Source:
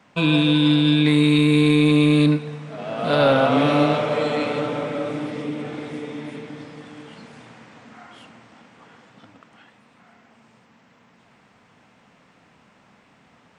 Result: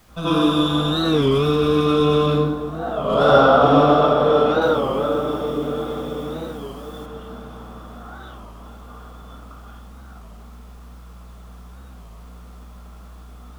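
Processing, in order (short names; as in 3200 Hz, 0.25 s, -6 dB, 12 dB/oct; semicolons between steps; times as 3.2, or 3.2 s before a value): tracing distortion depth 0.16 ms; hum 60 Hz, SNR 31 dB; low shelf 68 Hz -8.5 dB; analogue delay 0.15 s, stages 1024, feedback 77%, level -11.5 dB; reverb RT60 0.60 s, pre-delay 79 ms, DRR -10.5 dB; added noise pink -37 dBFS; 4.62–7.06 high shelf 4500 Hz +8.5 dB; record warp 33 1/3 rpm, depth 160 cents; gain -18 dB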